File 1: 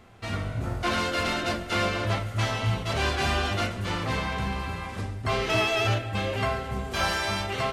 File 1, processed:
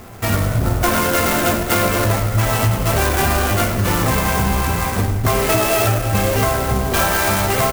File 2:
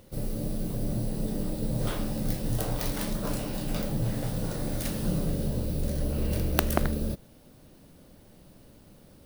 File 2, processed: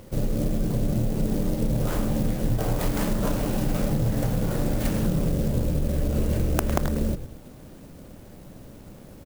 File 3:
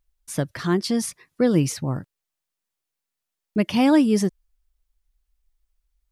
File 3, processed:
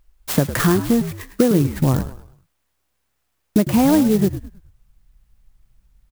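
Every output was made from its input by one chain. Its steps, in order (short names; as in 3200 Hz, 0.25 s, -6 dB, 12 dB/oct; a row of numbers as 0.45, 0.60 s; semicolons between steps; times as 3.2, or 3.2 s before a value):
treble ducked by the level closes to 1900 Hz, closed at -19 dBFS; high shelf 4900 Hz -4 dB; compressor 6:1, threshold -29 dBFS; on a send: frequency-shifting echo 0.105 s, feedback 39%, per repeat -68 Hz, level -11.5 dB; on the sum: clock jitter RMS 0.065 ms; normalise peaks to -3 dBFS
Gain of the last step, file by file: +15.5, +9.0, +15.5 dB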